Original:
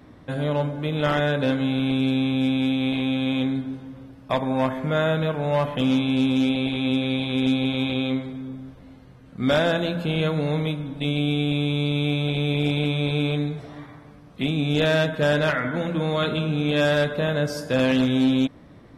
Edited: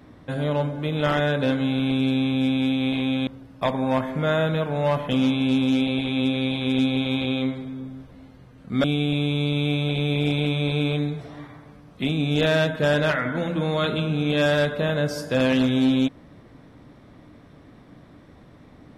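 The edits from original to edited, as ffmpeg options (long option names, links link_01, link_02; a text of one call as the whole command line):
ffmpeg -i in.wav -filter_complex "[0:a]asplit=3[link_01][link_02][link_03];[link_01]atrim=end=3.272[link_04];[link_02]atrim=start=3.948:end=9.522[link_05];[link_03]atrim=start=11.228[link_06];[link_04][link_05]acrossfade=duration=0.004:curve1=hsin:curve2=hsin[link_07];[link_07][link_06]acrossfade=duration=0.004:curve1=hsin:curve2=hsin" out.wav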